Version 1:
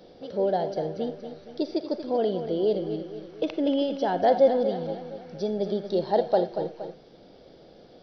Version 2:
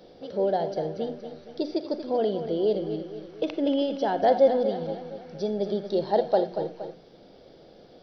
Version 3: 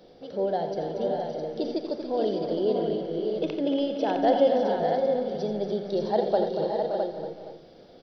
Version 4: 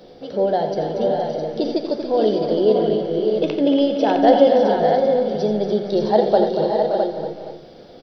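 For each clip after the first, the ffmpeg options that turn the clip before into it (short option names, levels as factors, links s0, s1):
-af "bandreject=f=60:t=h:w=6,bandreject=f=120:t=h:w=6,bandreject=f=180:t=h:w=6,bandreject=f=240:t=h:w=6,bandreject=f=300:t=h:w=6"
-af "aecho=1:1:86|285|568|600|660:0.299|0.316|0.355|0.422|0.501,volume=0.794"
-filter_complex "[0:a]asplit=2[s0][s1];[s1]adelay=14,volume=0.282[s2];[s0][s2]amix=inputs=2:normalize=0,volume=2.51"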